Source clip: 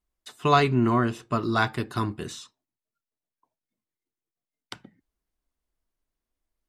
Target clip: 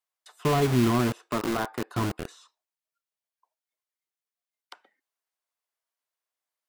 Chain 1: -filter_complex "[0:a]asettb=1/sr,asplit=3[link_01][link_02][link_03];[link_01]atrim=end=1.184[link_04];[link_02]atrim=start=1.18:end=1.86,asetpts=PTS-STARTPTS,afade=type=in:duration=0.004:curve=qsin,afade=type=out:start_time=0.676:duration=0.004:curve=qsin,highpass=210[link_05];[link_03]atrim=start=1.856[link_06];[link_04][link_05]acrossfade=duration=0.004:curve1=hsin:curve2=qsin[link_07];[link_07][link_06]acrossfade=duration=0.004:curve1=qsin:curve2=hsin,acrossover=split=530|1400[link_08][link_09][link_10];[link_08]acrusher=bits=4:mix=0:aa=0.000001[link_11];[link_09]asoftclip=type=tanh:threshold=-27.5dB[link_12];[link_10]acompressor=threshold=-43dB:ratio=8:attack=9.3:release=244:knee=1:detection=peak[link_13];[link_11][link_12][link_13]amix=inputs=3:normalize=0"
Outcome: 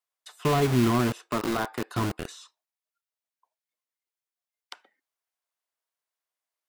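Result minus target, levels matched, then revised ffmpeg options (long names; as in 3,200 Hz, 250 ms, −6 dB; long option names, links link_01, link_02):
downward compressor: peak gain reduction −7.5 dB
-filter_complex "[0:a]asettb=1/sr,asplit=3[link_01][link_02][link_03];[link_01]atrim=end=1.184[link_04];[link_02]atrim=start=1.18:end=1.86,asetpts=PTS-STARTPTS,afade=type=in:duration=0.004:curve=qsin,afade=type=out:start_time=0.676:duration=0.004:curve=qsin,highpass=210[link_05];[link_03]atrim=start=1.856[link_06];[link_04][link_05]acrossfade=duration=0.004:curve1=hsin:curve2=qsin[link_07];[link_07][link_06]acrossfade=duration=0.004:curve1=qsin:curve2=hsin,acrossover=split=530|1400[link_08][link_09][link_10];[link_08]acrusher=bits=4:mix=0:aa=0.000001[link_11];[link_09]asoftclip=type=tanh:threshold=-27.5dB[link_12];[link_10]acompressor=threshold=-51.5dB:ratio=8:attack=9.3:release=244:knee=1:detection=peak[link_13];[link_11][link_12][link_13]amix=inputs=3:normalize=0"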